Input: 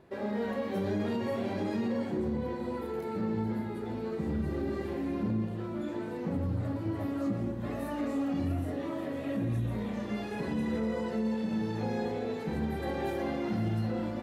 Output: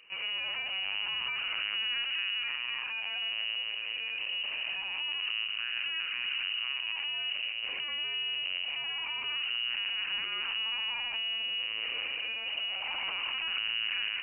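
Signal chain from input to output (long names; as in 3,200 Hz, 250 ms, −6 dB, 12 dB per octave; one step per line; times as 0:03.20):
high-pass filter 85 Hz 24 dB per octave
gain into a clipping stage and back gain 34 dB
linear-prediction vocoder at 8 kHz pitch kept
voice inversion scrambler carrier 2,900 Hz
auto-filter bell 0.25 Hz 480–1,600 Hz +10 dB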